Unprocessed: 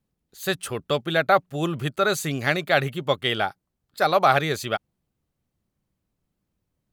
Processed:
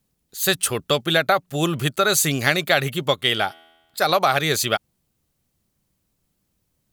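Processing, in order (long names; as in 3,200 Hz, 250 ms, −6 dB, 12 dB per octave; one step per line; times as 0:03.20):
0:03.14–0:04.09: tuned comb filter 82 Hz, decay 1.2 s, harmonics all, mix 30%
downward compressor, threshold −19 dBFS, peak gain reduction 7 dB
high-shelf EQ 3,400 Hz +10.5 dB
level +4 dB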